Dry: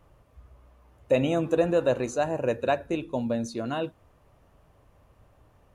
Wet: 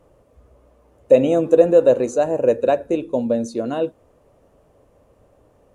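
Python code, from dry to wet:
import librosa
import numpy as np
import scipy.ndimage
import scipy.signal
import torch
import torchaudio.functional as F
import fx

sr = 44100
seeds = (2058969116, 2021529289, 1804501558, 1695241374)

y = fx.graphic_eq_10(x, sr, hz=(250, 500, 8000), db=(6, 12, 7))
y = y * librosa.db_to_amplitude(-1.5)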